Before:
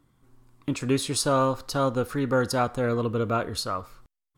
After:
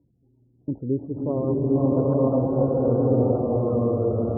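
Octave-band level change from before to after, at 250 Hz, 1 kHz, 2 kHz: +6.0 dB, −5.5 dB, below −25 dB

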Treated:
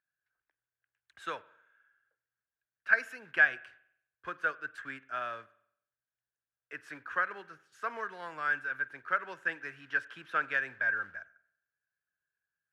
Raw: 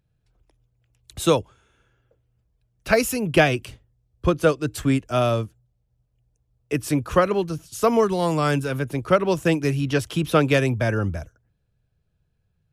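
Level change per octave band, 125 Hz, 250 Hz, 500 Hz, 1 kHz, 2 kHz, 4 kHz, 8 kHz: −36.0 dB, −30.0 dB, −24.0 dB, −11.0 dB, −0.5 dB, −19.5 dB, below −25 dB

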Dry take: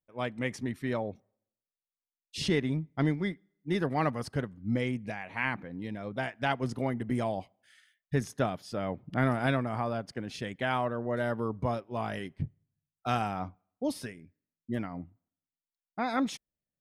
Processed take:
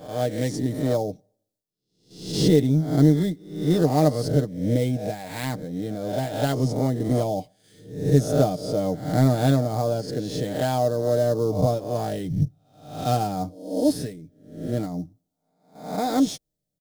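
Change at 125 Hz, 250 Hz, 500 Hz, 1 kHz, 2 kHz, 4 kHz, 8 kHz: +11.5, +9.5, +10.5, +5.0, −4.0, +7.0, +12.0 decibels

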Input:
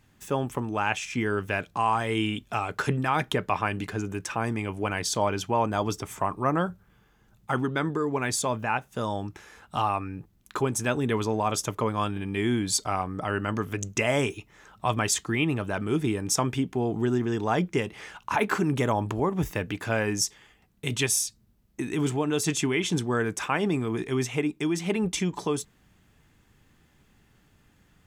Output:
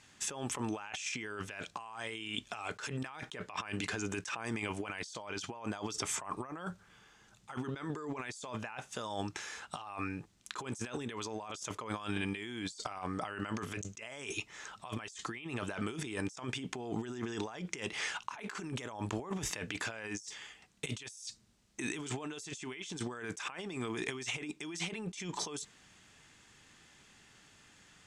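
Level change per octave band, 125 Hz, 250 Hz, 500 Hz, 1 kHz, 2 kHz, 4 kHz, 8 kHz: −14.0, −12.5, −14.5, −14.5, −9.5, −8.0, −10.5 decibels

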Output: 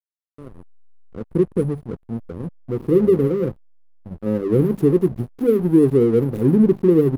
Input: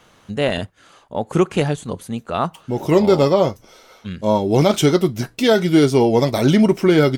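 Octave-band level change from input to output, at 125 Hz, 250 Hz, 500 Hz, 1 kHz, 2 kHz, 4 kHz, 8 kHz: −1.5 dB, −1.0 dB, −2.0 dB, −17.0 dB, below −15 dB, below −20 dB, below −15 dB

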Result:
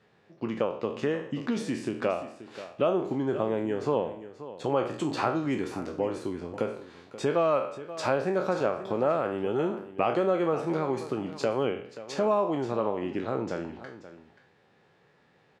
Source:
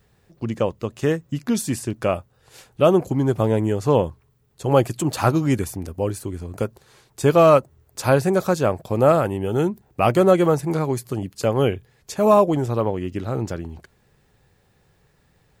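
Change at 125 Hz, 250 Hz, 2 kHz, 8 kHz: −15.0, −8.0, −6.0, −14.5 decibels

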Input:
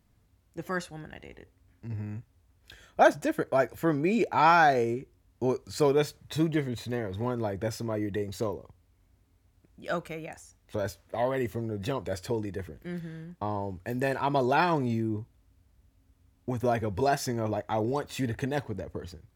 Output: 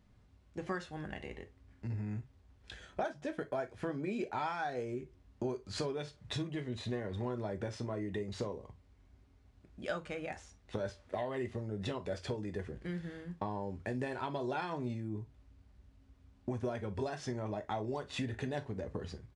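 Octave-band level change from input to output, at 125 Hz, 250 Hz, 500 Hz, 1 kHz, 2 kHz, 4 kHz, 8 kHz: −7.0, −8.5, −10.0, −13.5, −11.5, −6.0, −10.5 decibels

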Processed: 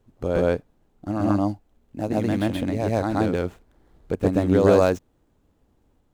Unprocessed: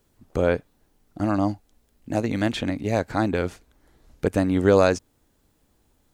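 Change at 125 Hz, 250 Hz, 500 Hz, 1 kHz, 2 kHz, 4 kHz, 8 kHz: +2.0, +1.5, +1.5, 0.0, −3.0, −3.5, −3.0 decibels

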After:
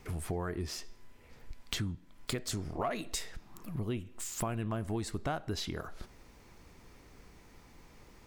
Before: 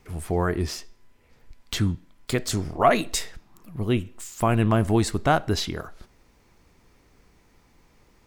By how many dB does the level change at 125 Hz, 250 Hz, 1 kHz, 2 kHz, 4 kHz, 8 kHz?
−12.0, −12.5, −15.0, −13.0, −9.0, −7.5 decibels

